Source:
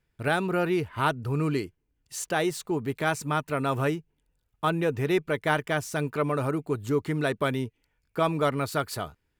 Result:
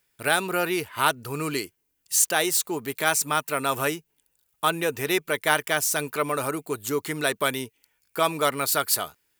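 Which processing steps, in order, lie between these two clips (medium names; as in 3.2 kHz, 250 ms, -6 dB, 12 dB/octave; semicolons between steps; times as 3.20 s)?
RIAA curve recording; trim +3 dB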